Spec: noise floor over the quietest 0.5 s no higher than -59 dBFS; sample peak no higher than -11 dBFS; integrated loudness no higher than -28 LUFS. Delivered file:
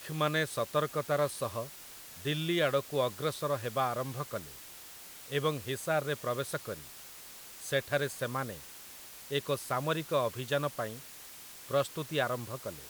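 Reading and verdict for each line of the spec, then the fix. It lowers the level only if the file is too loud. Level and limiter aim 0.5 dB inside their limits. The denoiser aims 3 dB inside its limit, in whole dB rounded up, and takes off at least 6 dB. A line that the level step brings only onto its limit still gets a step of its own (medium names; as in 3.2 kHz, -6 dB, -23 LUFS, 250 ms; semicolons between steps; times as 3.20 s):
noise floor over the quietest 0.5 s -49 dBFS: fail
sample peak -15.0 dBFS: pass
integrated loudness -33.5 LUFS: pass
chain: noise reduction 13 dB, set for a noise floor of -49 dBFS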